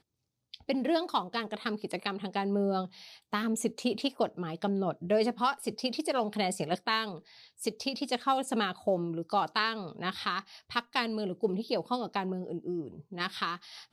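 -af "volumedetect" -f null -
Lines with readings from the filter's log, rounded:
mean_volume: -32.6 dB
max_volume: -12.0 dB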